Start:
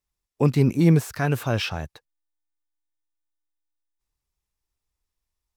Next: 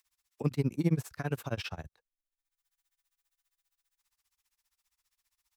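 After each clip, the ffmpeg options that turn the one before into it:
ffmpeg -i in.wav -filter_complex "[0:a]acrossover=split=130|940[link_01][link_02][link_03];[link_03]acompressor=mode=upward:threshold=-51dB:ratio=2.5[link_04];[link_01][link_02][link_04]amix=inputs=3:normalize=0,tremolo=f=15:d=0.97,volume=-7.5dB" out.wav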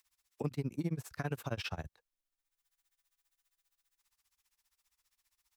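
ffmpeg -i in.wav -af "acompressor=threshold=-33dB:ratio=6,volume=1dB" out.wav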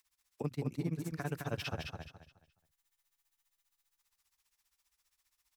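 ffmpeg -i in.wav -af "aecho=1:1:211|422|633|844:0.596|0.167|0.0467|0.0131,volume=-1dB" out.wav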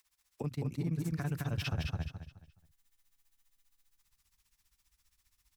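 ffmpeg -i in.wav -af "asubboost=boost=5.5:cutoff=240,alimiter=level_in=5.5dB:limit=-24dB:level=0:latency=1:release=23,volume=-5.5dB,volume=3dB" out.wav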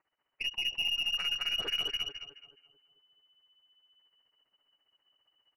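ffmpeg -i in.wav -filter_complex "[0:a]lowpass=frequency=2600:width_type=q:width=0.5098,lowpass=frequency=2600:width_type=q:width=0.6013,lowpass=frequency=2600:width_type=q:width=0.9,lowpass=frequency=2600:width_type=q:width=2.563,afreqshift=-3000,asplit=2[link_01][link_02];[link_02]adelay=218,lowpass=frequency=1200:poles=1,volume=-8dB,asplit=2[link_03][link_04];[link_04]adelay=218,lowpass=frequency=1200:poles=1,volume=0.48,asplit=2[link_05][link_06];[link_06]adelay=218,lowpass=frequency=1200:poles=1,volume=0.48,asplit=2[link_07][link_08];[link_08]adelay=218,lowpass=frequency=1200:poles=1,volume=0.48,asplit=2[link_09][link_10];[link_10]adelay=218,lowpass=frequency=1200:poles=1,volume=0.48,asplit=2[link_11][link_12];[link_12]adelay=218,lowpass=frequency=1200:poles=1,volume=0.48[link_13];[link_01][link_03][link_05][link_07][link_09][link_11][link_13]amix=inputs=7:normalize=0,aeval=exprs='0.075*(cos(1*acos(clip(val(0)/0.075,-1,1)))-cos(1*PI/2))+0.00299*(cos(8*acos(clip(val(0)/0.075,-1,1)))-cos(8*PI/2))':channel_layout=same,volume=1.5dB" out.wav

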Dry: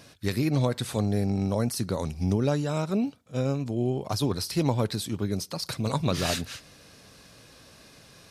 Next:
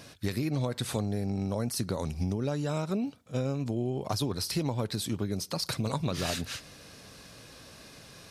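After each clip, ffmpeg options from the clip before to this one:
ffmpeg -i in.wav -af "acompressor=threshold=-29dB:ratio=6,volume=2dB" out.wav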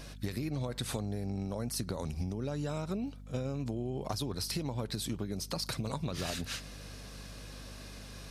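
ffmpeg -i in.wav -af "acompressor=threshold=-32dB:ratio=6,aeval=exprs='val(0)+0.00447*(sin(2*PI*50*n/s)+sin(2*PI*2*50*n/s)/2+sin(2*PI*3*50*n/s)/3+sin(2*PI*4*50*n/s)/4+sin(2*PI*5*50*n/s)/5)':channel_layout=same" out.wav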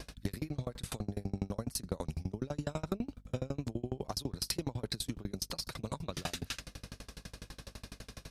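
ffmpeg -i in.wav -af "aeval=exprs='val(0)*pow(10,-33*if(lt(mod(12*n/s,1),2*abs(12)/1000),1-mod(12*n/s,1)/(2*abs(12)/1000),(mod(12*n/s,1)-2*abs(12)/1000)/(1-2*abs(12)/1000))/20)':channel_layout=same,volume=6.5dB" out.wav

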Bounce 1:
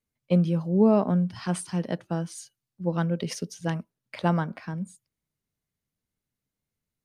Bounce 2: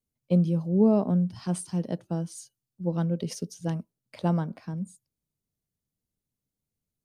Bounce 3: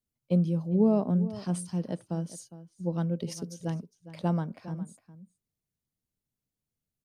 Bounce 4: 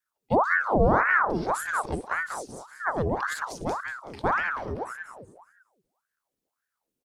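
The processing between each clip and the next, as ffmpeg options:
ffmpeg -i in.wav -af "equalizer=frequency=1800:width_type=o:width=2.1:gain=-11" out.wav
ffmpeg -i in.wav -filter_complex "[0:a]asplit=2[link_01][link_02];[link_02]adelay=408.2,volume=-15dB,highshelf=frequency=4000:gain=-9.18[link_03];[link_01][link_03]amix=inputs=2:normalize=0,volume=-2.5dB" out.wav
ffmpeg -i in.wav -filter_complex "[0:a]asplit=5[link_01][link_02][link_03][link_04][link_05];[link_02]adelay=188,afreqshift=-100,volume=-6.5dB[link_06];[link_03]adelay=376,afreqshift=-200,volume=-15.9dB[link_07];[link_04]adelay=564,afreqshift=-300,volume=-25.2dB[link_08];[link_05]adelay=752,afreqshift=-400,volume=-34.6dB[link_09];[link_01][link_06][link_07][link_08][link_09]amix=inputs=5:normalize=0,aeval=exprs='val(0)*sin(2*PI*950*n/s+950*0.75/1.8*sin(2*PI*1.8*n/s))':channel_layout=same,volume=5dB" out.wav

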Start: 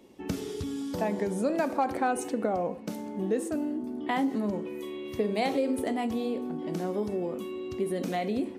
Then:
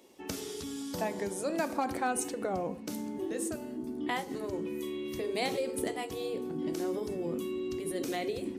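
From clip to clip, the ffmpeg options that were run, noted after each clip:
ffmpeg -i in.wav -af "asubboost=boost=10.5:cutoff=200,afftfilt=real='re*lt(hypot(re,im),0.562)':imag='im*lt(hypot(re,im),0.562)':win_size=1024:overlap=0.75,bass=frequency=250:gain=-13,treble=frequency=4000:gain=6,volume=-1dB" out.wav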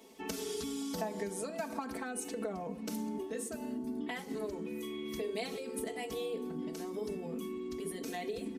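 ffmpeg -i in.wav -af "acompressor=threshold=-38dB:ratio=6,aecho=1:1:4.5:0.94" out.wav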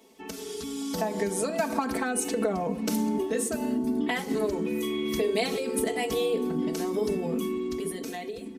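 ffmpeg -i in.wav -af "dynaudnorm=framelen=150:gausssize=13:maxgain=11dB" out.wav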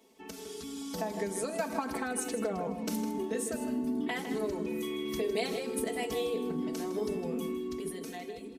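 ffmpeg -i in.wav -filter_complex "[0:a]asplit=2[link_01][link_02];[link_02]adelay=157.4,volume=-9dB,highshelf=frequency=4000:gain=-3.54[link_03];[link_01][link_03]amix=inputs=2:normalize=0,volume=-6dB" out.wav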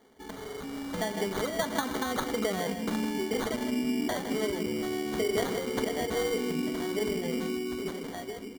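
ffmpeg -i in.wav -af "acrusher=samples=17:mix=1:aa=0.000001,volume=3dB" out.wav

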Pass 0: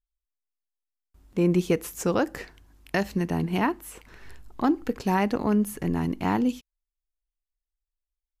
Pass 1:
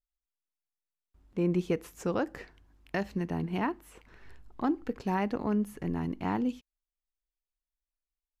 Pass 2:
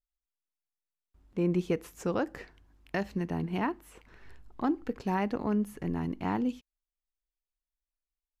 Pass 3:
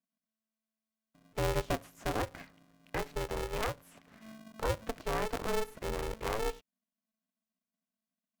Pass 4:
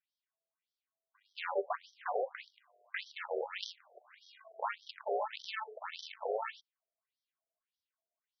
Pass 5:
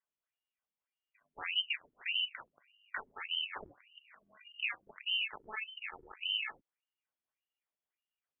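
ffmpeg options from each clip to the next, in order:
ffmpeg -i in.wav -af "highshelf=frequency=5700:gain=-11.5,volume=-6dB" out.wav
ffmpeg -i in.wav -af anull out.wav
ffmpeg -i in.wav -filter_complex "[0:a]acrossover=split=220|3100[link_01][link_02][link_03];[link_03]alimiter=level_in=22.5dB:limit=-24dB:level=0:latency=1,volume=-22.5dB[link_04];[link_01][link_02][link_04]amix=inputs=3:normalize=0,aeval=exprs='val(0)*sgn(sin(2*PI*220*n/s))':channel_layout=same,volume=-3.5dB" out.wav
ffmpeg -i in.wav -filter_complex "[0:a]asplit=2[link_01][link_02];[link_02]alimiter=level_in=6dB:limit=-24dB:level=0:latency=1:release=82,volume=-6dB,volume=-2.5dB[link_03];[link_01][link_03]amix=inputs=2:normalize=0,afftfilt=real='re*between(b*sr/1024,520*pow(4400/520,0.5+0.5*sin(2*PI*1.7*pts/sr))/1.41,520*pow(4400/520,0.5+0.5*sin(2*PI*1.7*pts/sr))*1.41)':imag='im*between(b*sr/1024,520*pow(4400/520,0.5+0.5*sin(2*PI*1.7*pts/sr))/1.41,520*pow(4400/520,0.5+0.5*sin(2*PI*1.7*pts/sr))*1.41)':win_size=1024:overlap=0.75,volume=1.5dB" out.wav
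ffmpeg -i in.wav -af "lowpass=frequency=3000:width_type=q:width=0.5098,lowpass=frequency=3000:width_type=q:width=0.6013,lowpass=frequency=3000:width_type=q:width=0.9,lowpass=frequency=3000:width_type=q:width=2.563,afreqshift=-3500" out.wav

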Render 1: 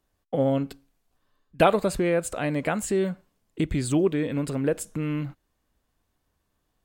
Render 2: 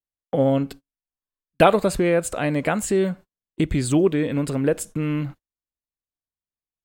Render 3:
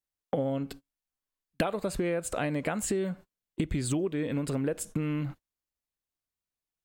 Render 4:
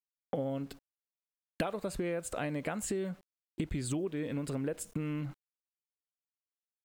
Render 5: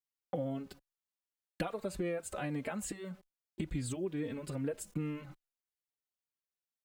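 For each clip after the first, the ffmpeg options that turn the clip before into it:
ffmpeg -i in.wav -af "agate=range=-32dB:threshold=-42dB:ratio=16:detection=peak,volume=4dB" out.wav
ffmpeg -i in.wav -af "acompressor=threshold=-28dB:ratio=10,volume=1.5dB" out.wav
ffmpeg -i in.wav -af "aeval=exprs='val(0)*gte(abs(val(0)),0.00237)':channel_layout=same,volume=-5dB" out.wav
ffmpeg -i in.wav -filter_complex "[0:a]asplit=2[link_01][link_02];[link_02]adelay=3.7,afreqshift=-2.4[link_03];[link_01][link_03]amix=inputs=2:normalize=1" out.wav

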